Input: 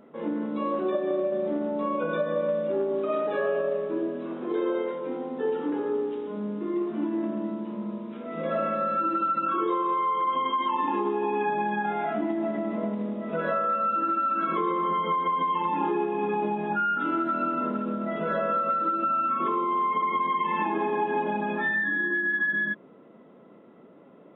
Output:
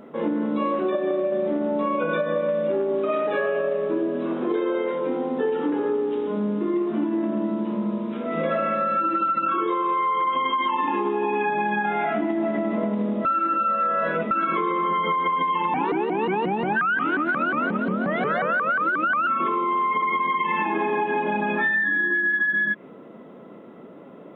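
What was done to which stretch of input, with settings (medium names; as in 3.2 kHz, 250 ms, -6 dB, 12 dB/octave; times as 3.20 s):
13.25–14.31 s: reverse
15.74–19.27 s: vibrato with a chosen wave saw up 5.6 Hz, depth 250 cents
whole clip: dynamic bell 2.2 kHz, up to +7 dB, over -44 dBFS, Q 1.6; compression, threshold -29 dBFS; trim +8.5 dB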